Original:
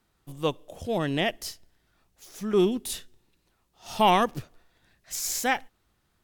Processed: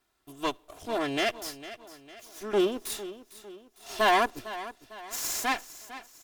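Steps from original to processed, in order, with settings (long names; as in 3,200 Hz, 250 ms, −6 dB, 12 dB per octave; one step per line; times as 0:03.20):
lower of the sound and its delayed copy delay 2.9 ms
low-shelf EQ 260 Hz −9.5 dB
on a send: repeating echo 453 ms, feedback 46%, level −15 dB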